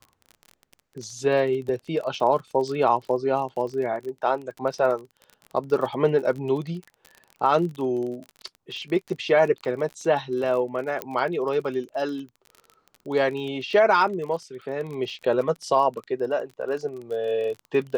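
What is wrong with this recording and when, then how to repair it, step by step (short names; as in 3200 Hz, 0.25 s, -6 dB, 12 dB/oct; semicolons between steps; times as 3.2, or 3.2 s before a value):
crackle 30/s -32 dBFS
11.02 pop -14 dBFS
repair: de-click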